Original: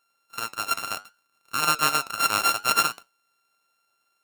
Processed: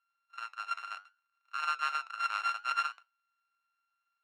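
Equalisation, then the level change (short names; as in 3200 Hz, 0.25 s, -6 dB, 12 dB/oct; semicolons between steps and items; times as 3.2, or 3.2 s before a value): ladder band-pass 1800 Hz, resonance 25%; +1.5 dB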